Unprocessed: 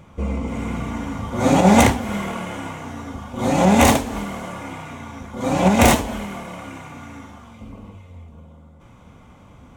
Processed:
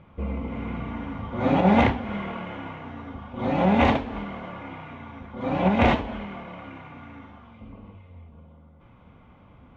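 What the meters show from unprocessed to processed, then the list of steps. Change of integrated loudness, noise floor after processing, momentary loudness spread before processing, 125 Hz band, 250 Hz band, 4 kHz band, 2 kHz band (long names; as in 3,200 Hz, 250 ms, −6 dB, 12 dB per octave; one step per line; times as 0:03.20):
−6.0 dB, −52 dBFS, 21 LU, −5.5 dB, −5.5 dB, −9.0 dB, −5.5 dB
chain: low-pass filter 3,300 Hz 24 dB per octave
level −5.5 dB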